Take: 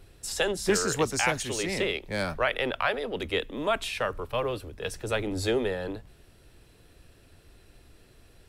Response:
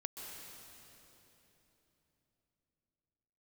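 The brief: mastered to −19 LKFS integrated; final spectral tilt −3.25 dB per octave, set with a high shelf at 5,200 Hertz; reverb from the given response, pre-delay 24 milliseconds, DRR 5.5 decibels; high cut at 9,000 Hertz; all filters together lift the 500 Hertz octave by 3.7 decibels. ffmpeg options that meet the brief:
-filter_complex "[0:a]lowpass=9000,equalizer=frequency=500:width_type=o:gain=4.5,highshelf=frequency=5200:gain=5.5,asplit=2[link_01][link_02];[1:a]atrim=start_sample=2205,adelay=24[link_03];[link_02][link_03]afir=irnorm=-1:irlink=0,volume=-4.5dB[link_04];[link_01][link_04]amix=inputs=2:normalize=0,volume=6.5dB"

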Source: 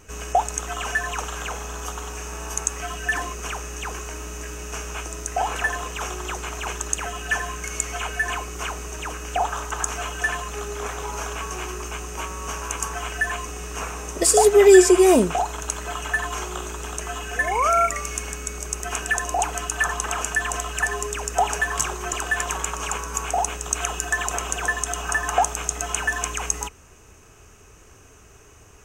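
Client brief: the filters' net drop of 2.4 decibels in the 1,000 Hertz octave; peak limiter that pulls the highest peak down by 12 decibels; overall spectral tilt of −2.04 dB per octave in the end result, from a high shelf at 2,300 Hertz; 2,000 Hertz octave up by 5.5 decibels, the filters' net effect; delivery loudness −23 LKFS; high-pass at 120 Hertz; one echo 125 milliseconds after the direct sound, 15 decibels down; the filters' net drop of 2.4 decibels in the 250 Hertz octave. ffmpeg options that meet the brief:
ffmpeg -i in.wav -af "highpass=120,equalizer=frequency=250:width_type=o:gain=-4,equalizer=frequency=1000:width_type=o:gain=-6.5,equalizer=frequency=2000:width_type=o:gain=5.5,highshelf=frequency=2300:gain=7,alimiter=limit=-9dB:level=0:latency=1,aecho=1:1:125:0.178" out.wav

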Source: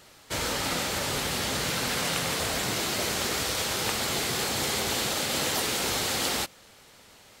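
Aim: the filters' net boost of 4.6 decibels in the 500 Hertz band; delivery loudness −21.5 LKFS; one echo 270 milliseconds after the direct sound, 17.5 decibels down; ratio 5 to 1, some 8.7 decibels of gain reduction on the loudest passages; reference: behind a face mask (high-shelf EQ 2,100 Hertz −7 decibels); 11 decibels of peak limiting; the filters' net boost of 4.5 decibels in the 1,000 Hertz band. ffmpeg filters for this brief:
ffmpeg -i in.wav -af "equalizer=frequency=500:width_type=o:gain=4.5,equalizer=frequency=1000:width_type=o:gain=6,acompressor=threshold=-31dB:ratio=5,alimiter=level_in=5dB:limit=-24dB:level=0:latency=1,volume=-5dB,highshelf=frequency=2100:gain=-7,aecho=1:1:270:0.133,volume=18.5dB" out.wav

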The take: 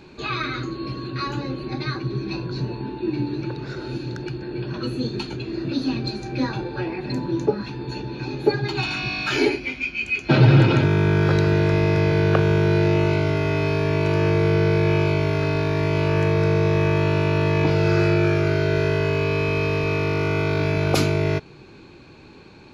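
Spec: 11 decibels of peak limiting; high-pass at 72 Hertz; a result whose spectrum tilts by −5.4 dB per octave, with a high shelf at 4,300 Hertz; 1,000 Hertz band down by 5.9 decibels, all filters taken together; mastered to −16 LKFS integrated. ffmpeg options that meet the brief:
ffmpeg -i in.wav -af "highpass=72,equalizer=frequency=1000:width_type=o:gain=-8,highshelf=frequency=4300:gain=6,volume=9.5dB,alimiter=limit=-6dB:level=0:latency=1" out.wav

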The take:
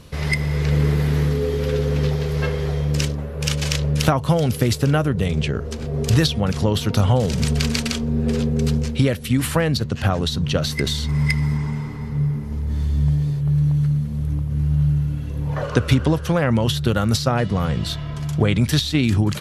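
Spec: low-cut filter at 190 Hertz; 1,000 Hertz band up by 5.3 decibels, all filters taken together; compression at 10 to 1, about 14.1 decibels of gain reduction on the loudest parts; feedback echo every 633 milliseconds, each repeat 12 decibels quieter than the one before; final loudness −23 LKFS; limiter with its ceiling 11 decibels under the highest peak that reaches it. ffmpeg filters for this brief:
ffmpeg -i in.wav -af "highpass=190,equalizer=frequency=1000:width_type=o:gain=7,acompressor=threshold=-27dB:ratio=10,alimiter=limit=-22dB:level=0:latency=1,aecho=1:1:633|1266|1899:0.251|0.0628|0.0157,volume=9dB" out.wav

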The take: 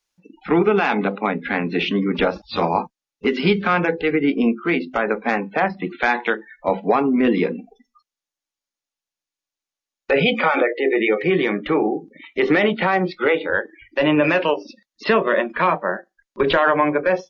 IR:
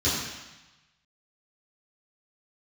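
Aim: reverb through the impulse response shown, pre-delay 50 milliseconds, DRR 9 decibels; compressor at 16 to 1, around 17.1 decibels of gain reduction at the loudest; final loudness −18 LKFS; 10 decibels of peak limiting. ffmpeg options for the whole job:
-filter_complex "[0:a]acompressor=threshold=-30dB:ratio=16,alimiter=level_in=1.5dB:limit=-24dB:level=0:latency=1,volume=-1.5dB,asplit=2[link_01][link_02];[1:a]atrim=start_sample=2205,adelay=50[link_03];[link_02][link_03]afir=irnorm=-1:irlink=0,volume=-22dB[link_04];[link_01][link_04]amix=inputs=2:normalize=0,volume=17.5dB"

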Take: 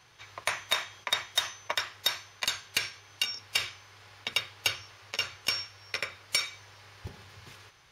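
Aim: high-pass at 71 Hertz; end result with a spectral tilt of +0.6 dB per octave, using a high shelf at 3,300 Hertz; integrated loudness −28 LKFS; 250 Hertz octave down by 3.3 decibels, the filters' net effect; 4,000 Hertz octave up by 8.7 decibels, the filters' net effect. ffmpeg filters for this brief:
ffmpeg -i in.wav -af "highpass=71,equalizer=frequency=250:width_type=o:gain=-5,highshelf=frequency=3300:gain=8,equalizer=frequency=4000:width_type=o:gain=5,volume=-4dB" out.wav

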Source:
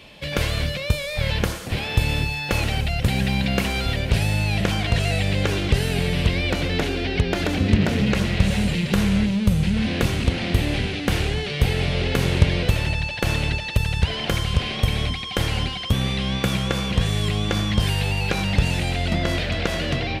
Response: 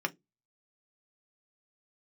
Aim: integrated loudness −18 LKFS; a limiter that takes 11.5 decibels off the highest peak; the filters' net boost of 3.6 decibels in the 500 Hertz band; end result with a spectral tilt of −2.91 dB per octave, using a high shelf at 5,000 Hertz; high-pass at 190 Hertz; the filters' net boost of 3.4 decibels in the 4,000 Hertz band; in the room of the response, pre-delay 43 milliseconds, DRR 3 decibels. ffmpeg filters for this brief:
-filter_complex "[0:a]highpass=190,equalizer=frequency=500:width_type=o:gain=4.5,equalizer=frequency=4000:width_type=o:gain=7,highshelf=frequency=5000:gain=-6.5,alimiter=limit=-14dB:level=0:latency=1,asplit=2[link_01][link_02];[1:a]atrim=start_sample=2205,adelay=43[link_03];[link_02][link_03]afir=irnorm=-1:irlink=0,volume=-9.5dB[link_04];[link_01][link_04]amix=inputs=2:normalize=0,volume=5dB"

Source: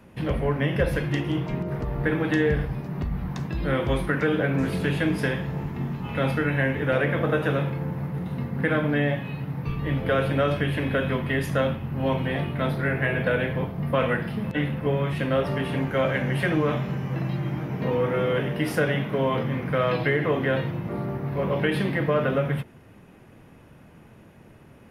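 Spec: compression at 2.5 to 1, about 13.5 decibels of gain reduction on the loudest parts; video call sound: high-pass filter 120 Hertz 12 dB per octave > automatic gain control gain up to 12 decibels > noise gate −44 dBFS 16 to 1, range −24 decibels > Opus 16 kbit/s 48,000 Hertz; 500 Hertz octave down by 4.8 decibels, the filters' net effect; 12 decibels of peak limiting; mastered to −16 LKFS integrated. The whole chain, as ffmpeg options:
ffmpeg -i in.wav -af "equalizer=frequency=500:width_type=o:gain=-5.5,acompressor=threshold=-42dB:ratio=2.5,alimiter=level_in=11.5dB:limit=-24dB:level=0:latency=1,volume=-11.5dB,highpass=120,dynaudnorm=maxgain=12dB,agate=range=-24dB:threshold=-44dB:ratio=16,volume=20.5dB" -ar 48000 -c:a libopus -b:a 16k out.opus

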